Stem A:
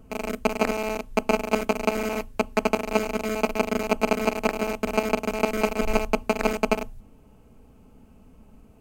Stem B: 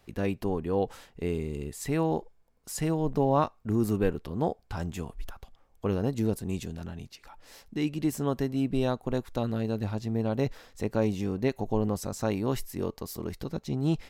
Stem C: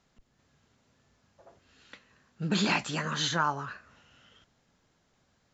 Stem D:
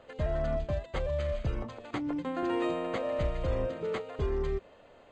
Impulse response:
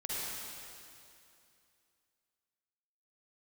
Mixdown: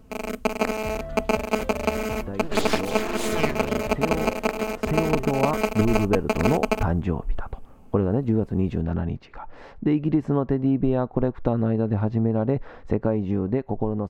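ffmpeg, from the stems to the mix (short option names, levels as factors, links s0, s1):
-filter_complex "[0:a]volume=0.944[s0];[1:a]acompressor=threshold=0.0282:ratio=6,lowpass=1400,dynaudnorm=f=530:g=11:m=3.76,adelay=2100,volume=1.26[s1];[2:a]aeval=exprs='abs(val(0))':c=same,volume=1.12[s2];[3:a]adelay=650,volume=0.631[s3];[s0][s1][s2][s3]amix=inputs=4:normalize=0"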